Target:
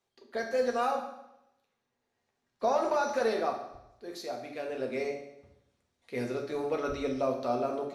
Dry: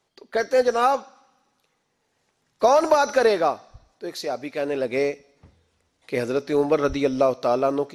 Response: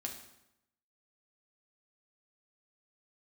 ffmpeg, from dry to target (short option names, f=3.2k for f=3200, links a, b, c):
-filter_complex "[0:a]asettb=1/sr,asplit=3[a][b][c];[a]atrim=end=0.914[d];[b]atrim=start=0.91:end=3.04,asetpts=PTS-STARTPTS,afade=t=in:d=0.004:c=qsin,afade=t=out:st=2.126:d=0.004:c=qsin,highshelf=f=6.2k:g=-8[e];[c]atrim=start=3.036[f];[d][e]acrossfade=d=0.004:c1=hsin:c2=qsin[g];[g][f]acrossfade=d=0.004:c1=qsin:c2=hsin[h];[1:a]atrim=start_sample=2205[i];[h][i]afir=irnorm=-1:irlink=0,volume=-8.5dB"